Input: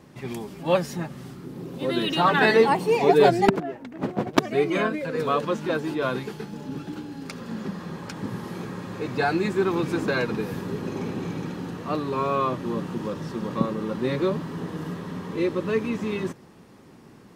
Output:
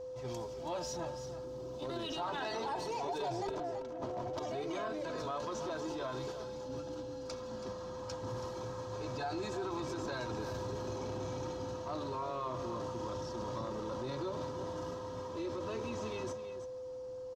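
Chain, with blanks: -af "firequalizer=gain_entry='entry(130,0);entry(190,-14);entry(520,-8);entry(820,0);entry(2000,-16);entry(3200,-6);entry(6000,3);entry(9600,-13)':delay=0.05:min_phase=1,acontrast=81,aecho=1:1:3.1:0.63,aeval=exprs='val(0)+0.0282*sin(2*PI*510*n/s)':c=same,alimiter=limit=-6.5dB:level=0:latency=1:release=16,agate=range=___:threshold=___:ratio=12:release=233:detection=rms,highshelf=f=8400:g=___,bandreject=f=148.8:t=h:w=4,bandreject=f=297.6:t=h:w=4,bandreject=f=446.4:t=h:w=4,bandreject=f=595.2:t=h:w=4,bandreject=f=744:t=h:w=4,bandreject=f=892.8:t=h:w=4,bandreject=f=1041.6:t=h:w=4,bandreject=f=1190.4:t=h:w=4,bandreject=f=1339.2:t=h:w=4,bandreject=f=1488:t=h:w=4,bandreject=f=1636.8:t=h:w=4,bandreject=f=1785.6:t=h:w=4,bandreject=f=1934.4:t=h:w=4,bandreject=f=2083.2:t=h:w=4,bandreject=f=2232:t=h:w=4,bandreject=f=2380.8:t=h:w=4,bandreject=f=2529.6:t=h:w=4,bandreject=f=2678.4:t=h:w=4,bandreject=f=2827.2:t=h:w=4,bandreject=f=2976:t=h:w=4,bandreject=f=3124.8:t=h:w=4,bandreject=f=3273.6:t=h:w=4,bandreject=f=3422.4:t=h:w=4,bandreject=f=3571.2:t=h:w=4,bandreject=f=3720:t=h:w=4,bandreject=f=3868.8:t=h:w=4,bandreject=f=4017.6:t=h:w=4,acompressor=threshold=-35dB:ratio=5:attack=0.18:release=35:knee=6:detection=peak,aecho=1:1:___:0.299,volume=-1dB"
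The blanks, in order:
-9dB, -28dB, -4.5, 328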